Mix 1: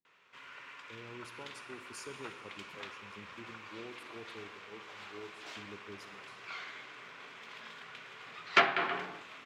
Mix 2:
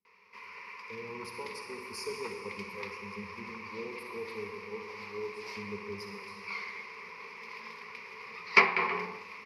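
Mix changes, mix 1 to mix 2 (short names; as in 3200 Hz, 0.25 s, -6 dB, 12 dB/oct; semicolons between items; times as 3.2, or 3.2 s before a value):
speech: send +9.0 dB; master: add ripple EQ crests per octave 0.86, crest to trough 17 dB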